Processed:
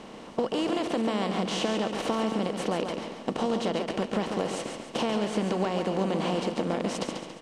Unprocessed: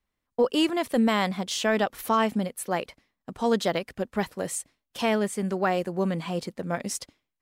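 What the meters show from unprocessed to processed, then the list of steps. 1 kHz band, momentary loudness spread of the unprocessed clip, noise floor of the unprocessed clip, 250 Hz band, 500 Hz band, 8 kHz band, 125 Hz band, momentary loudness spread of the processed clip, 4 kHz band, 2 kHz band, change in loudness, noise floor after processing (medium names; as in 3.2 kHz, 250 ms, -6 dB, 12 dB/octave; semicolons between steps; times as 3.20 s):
-2.5 dB, 10 LU, -84 dBFS, -1.0 dB, -1.5 dB, -6.0 dB, -1.0 dB, 6 LU, -1.0 dB, -5.0 dB, -2.0 dB, -44 dBFS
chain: spectral levelling over time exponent 0.4; distance through air 100 m; compression, threshold -23 dBFS, peak gain reduction 9 dB; peaking EQ 1.7 kHz -7 dB 1.1 oct; on a send: feedback delay 140 ms, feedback 42%, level -6.5 dB; on the sum: trim -1 dB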